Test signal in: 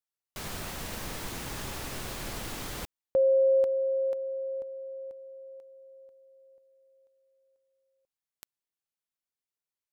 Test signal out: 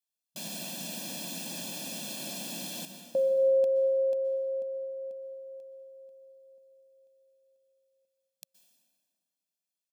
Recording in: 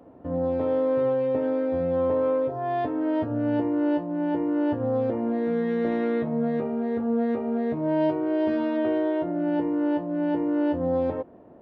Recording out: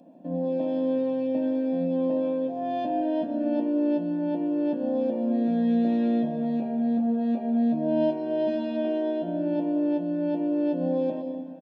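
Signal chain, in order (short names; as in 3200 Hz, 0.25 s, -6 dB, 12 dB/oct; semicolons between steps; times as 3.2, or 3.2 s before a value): brick-wall FIR high-pass 160 Hz; band shelf 1300 Hz -13.5 dB; comb 1.2 ms, depth 85%; plate-style reverb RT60 2.1 s, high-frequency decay 0.7×, pre-delay 0.11 s, DRR 7.5 dB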